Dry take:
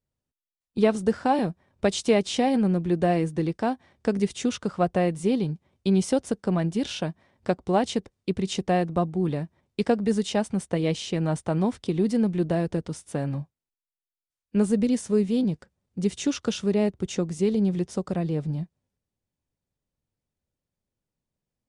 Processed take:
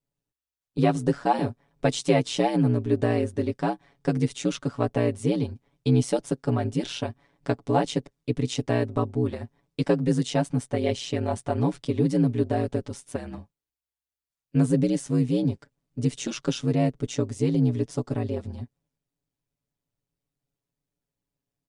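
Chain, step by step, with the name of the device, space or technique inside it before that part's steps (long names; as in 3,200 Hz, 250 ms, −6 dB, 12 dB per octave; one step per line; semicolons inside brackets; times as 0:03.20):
ring-modulated robot voice (ring modulation 60 Hz; comb filter 7.1 ms, depth 81%)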